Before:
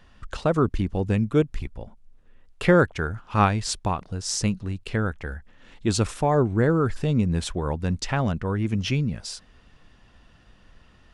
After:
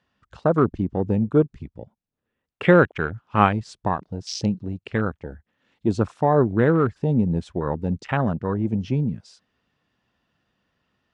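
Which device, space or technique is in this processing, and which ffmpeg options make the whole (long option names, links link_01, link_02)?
over-cleaned archive recording: -af "highpass=120,lowpass=6700,afwtdn=0.0251,volume=3dB"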